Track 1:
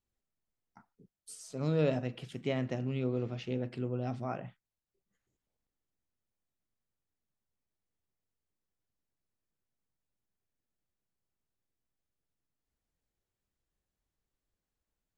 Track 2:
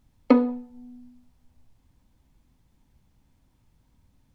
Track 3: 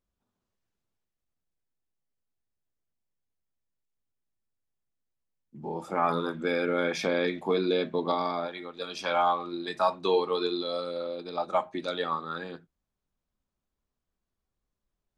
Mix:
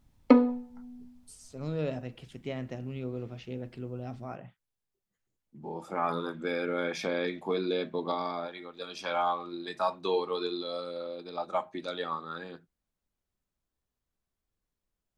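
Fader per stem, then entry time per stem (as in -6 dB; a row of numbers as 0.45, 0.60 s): -3.5, -1.5, -4.0 dB; 0.00, 0.00, 0.00 s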